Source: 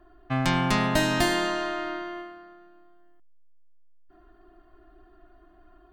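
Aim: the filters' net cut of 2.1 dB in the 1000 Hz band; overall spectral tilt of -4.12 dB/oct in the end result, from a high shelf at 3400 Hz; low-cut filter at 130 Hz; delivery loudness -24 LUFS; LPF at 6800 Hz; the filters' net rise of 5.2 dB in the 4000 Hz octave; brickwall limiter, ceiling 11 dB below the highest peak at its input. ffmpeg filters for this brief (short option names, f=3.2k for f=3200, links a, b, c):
-af "highpass=130,lowpass=6.8k,equalizer=f=1k:t=o:g=-3.5,highshelf=f=3.4k:g=5,equalizer=f=4k:t=o:g=4,volume=4.5dB,alimiter=limit=-14dB:level=0:latency=1"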